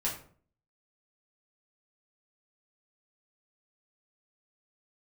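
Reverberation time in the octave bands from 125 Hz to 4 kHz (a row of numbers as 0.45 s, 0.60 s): 0.60 s, 0.60 s, 0.55 s, 0.45 s, 0.40 s, 0.30 s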